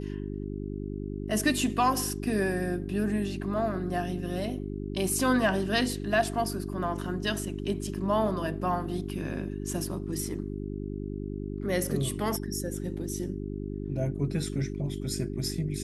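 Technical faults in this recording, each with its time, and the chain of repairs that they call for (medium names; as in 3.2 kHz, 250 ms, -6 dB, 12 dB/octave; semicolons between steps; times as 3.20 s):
hum 50 Hz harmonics 8 -35 dBFS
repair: de-hum 50 Hz, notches 8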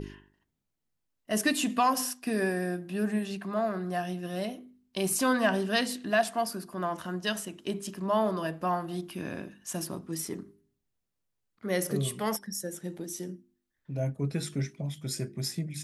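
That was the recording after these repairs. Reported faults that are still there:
nothing left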